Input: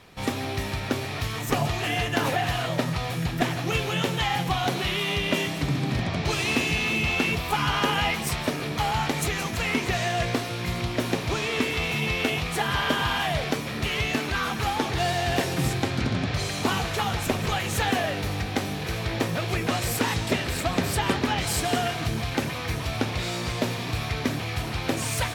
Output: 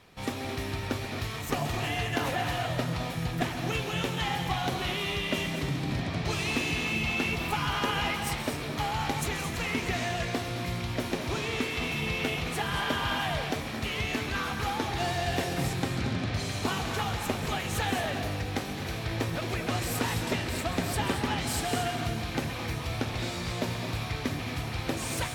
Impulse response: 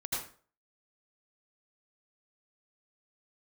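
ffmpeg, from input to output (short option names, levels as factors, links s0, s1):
-filter_complex "[0:a]asplit=2[s0][s1];[1:a]atrim=start_sample=2205,adelay=132[s2];[s1][s2]afir=irnorm=-1:irlink=0,volume=0.316[s3];[s0][s3]amix=inputs=2:normalize=0,volume=0.531"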